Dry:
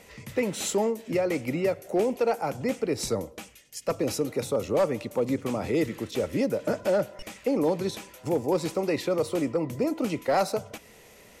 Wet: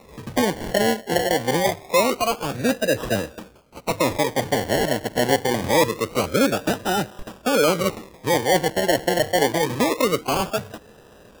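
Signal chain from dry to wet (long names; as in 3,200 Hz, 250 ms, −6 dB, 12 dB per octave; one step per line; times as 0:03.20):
formants moved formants +6 semitones
low shelf with overshoot 650 Hz +7.5 dB, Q 1.5
sample-and-hold swept by an LFO 28×, swing 60% 0.25 Hz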